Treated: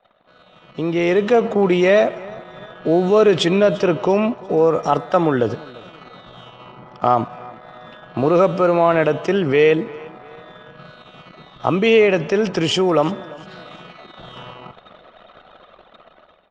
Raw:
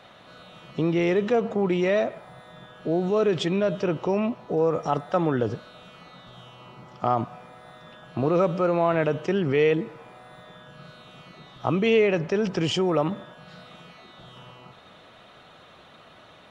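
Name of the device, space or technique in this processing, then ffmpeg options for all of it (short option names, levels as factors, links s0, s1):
voice memo with heavy noise removal: -af "equalizer=f=120:w=0.68:g=-5,anlmdn=0.0158,dynaudnorm=f=400:g=5:m=5.01,aecho=1:1:345|690|1035:0.0794|0.031|0.0121,volume=0.841"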